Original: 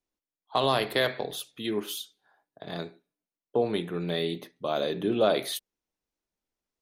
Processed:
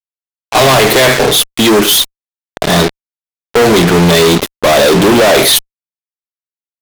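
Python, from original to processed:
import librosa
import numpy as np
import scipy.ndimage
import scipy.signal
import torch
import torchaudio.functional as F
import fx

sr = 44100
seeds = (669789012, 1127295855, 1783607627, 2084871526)

y = fx.fuzz(x, sr, gain_db=50.0, gate_db=-43.0)
y = y * librosa.db_to_amplitude(7.5)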